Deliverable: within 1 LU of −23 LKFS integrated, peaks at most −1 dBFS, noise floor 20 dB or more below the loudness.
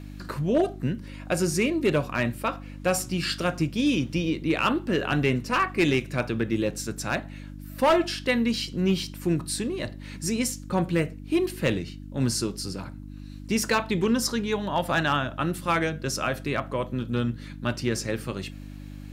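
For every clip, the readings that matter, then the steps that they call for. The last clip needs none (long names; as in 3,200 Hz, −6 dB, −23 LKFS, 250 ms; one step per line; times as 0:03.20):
share of clipped samples 0.4%; peaks flattened at −15.0 dBFS; mains hum 50 Hz; hum harmonics up to 300 Hz; level of the hum −37 dBFS; integrated loudness −26.5 LKFS; sample peak −15.0 dBFS; target loudness −23.0 LKFS
→ clipped peaks rebuilt −15 dBFS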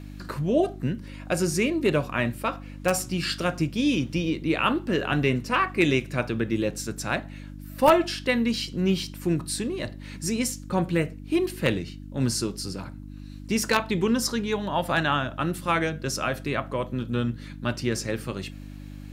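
share of clipped samples 0.0%; mains hum 50 Hz; hum harmonics up to 300 Hz; level of the hum −38 dBFS
→ hum removal 50 Hz, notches 6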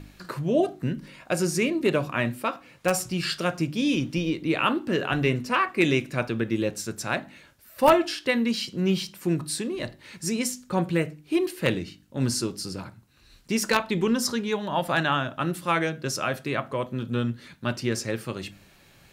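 mains hum none found; integrated loudness −26.5 LKFS; sample peak −5.5 dBFS; target loudness −23.0 LKFS
→ level +3.5 dB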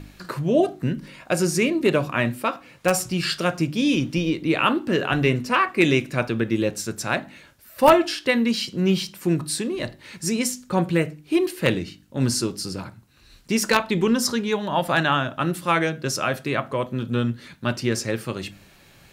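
integrated loudness −23.0 LKFS; sample peak −2.0 dBFS; background noise floor −52 dBFS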